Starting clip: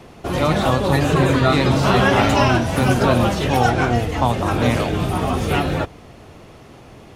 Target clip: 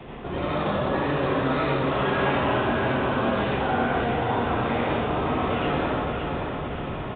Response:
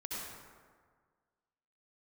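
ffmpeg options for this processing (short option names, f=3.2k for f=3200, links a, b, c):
-filter_complex "[0:a]areverse,acompressor=threshold=-30dB:ratio=5,areverse,aecho=1:1:568|1136|1704|2272|2840|3408:0.501|0.261|0.136|0.0705|0.0366|0.0191[a];[1:a]atrim=start_sample=2205[b];[a][b]afir=irnorm=-1:irlink=0,acrossover=split=230|1200[c][d][e];[c]alimiter=level_in=9.5dB:limit=-24dB:level=0:latency=1:release=194,volume=-9.5dB[f];[f][d][e]amix=inputs=3:normalize=0,aresample=8000,aresample=44100,acontrast=65"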